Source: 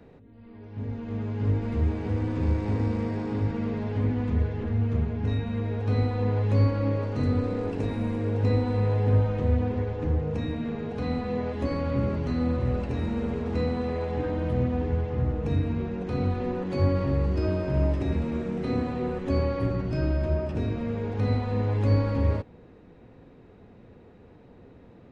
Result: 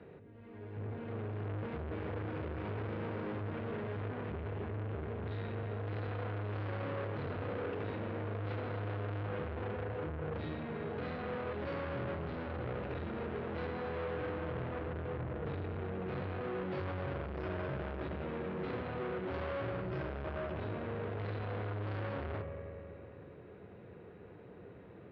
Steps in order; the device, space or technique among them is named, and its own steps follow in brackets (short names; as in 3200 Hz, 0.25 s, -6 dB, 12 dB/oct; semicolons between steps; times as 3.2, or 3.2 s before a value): analogue delay pedal into a guitar amplifier (analogue delay 88 ms, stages 2048, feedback 80%, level -16 dB; tube stage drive 36 dB, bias 0.4; speaker cabinet 95–3400 Hz, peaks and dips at 250 Hz -9 dB, 390 Hz +3 dB, 840 Hz -3 dB, 1500 Hz +3 dB); gain +1 dB